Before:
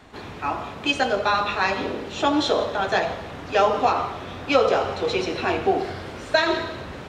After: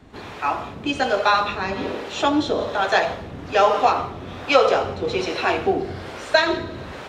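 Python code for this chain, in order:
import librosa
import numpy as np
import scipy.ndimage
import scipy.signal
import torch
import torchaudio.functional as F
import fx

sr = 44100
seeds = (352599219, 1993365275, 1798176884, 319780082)

y = fx.harmonic_tremolo(x, sr, hz=1.2, depth_pct=70, crossover_hz=410.0)
y = y * 10.0 ** (4.5 / 20.0)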